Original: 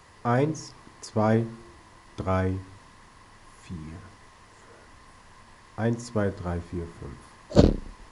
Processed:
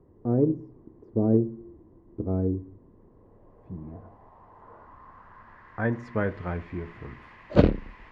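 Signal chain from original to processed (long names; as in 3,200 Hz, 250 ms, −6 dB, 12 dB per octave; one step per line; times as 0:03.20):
low-pass filter sweep 360 Hz → 2,300 Hz, 0:02.78–0:06.37
harmonic generator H 7 −42 dB, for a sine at −1 dBFS
level −1 dB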